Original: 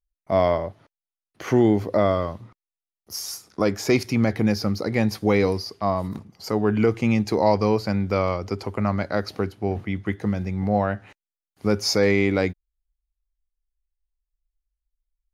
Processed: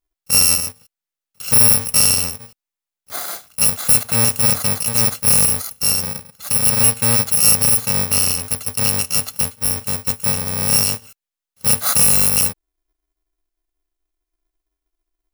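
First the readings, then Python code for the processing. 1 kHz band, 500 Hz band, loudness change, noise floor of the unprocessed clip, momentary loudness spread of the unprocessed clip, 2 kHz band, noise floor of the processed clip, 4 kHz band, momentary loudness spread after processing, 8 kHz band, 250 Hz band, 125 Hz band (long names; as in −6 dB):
−2.5 dB, −9.5 dB, +9.5 dB, below −85 dBFS, 11 LU, +3.0 dB, below −85 dBFS, +12.5 dB, 12 LU, +24.5 dB, −7.0 dB, +0.5 dB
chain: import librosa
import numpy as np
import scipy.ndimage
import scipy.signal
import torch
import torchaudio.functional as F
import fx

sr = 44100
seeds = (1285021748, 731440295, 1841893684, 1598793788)

y = fx.bit_reversed(x, sr, seeds[0], block=128)
y = fx.low_shelf(y, sr, hz=230.0, db=-6.0)
y = F.gain(torch.from_numpy(y), 6.0).numpy()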